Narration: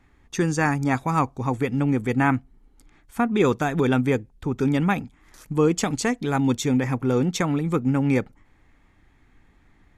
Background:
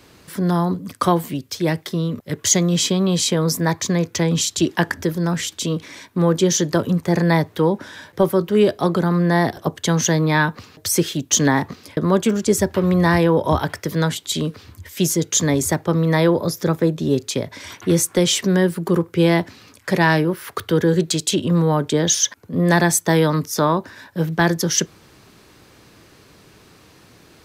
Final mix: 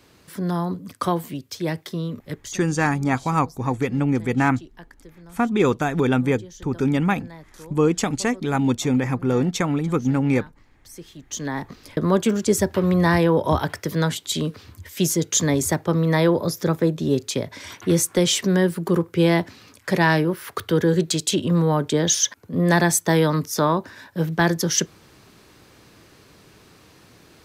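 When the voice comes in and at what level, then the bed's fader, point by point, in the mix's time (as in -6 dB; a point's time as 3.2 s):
2.20 s, +1.0 dB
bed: 2.32 s -5.5 dB
2.58 s -25.5 dB
10.84 s -25.5 dB
11.93 s -2 dB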